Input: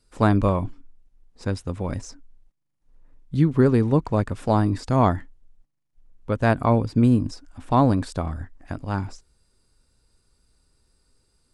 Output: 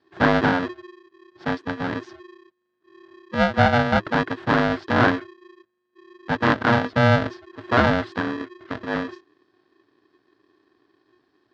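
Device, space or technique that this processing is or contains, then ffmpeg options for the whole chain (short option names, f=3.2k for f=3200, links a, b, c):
ring modulator pedal into a guitar cabinet: -af "aeval=exprs='val(0)*sgn(sin(2*PI*360*n/s))':c=same,highpass=86,equalizer=f=110:t=q:w=4:g=6,equalizer=f=280:t=q:w=4:g=6,equalizer=f=510:t=q:w=4:g=-3,equalizer=f=730:t=q:w=4:g=4,equalizer=f=1.6k:t=q:w=4:g=9,equalizer=f=2.5k:t=q:w=4:g=-4,lowpass=f=4.1k:w=0.5412,lowpass=f=4.1k:w=1.3066,volume=-1.5dB"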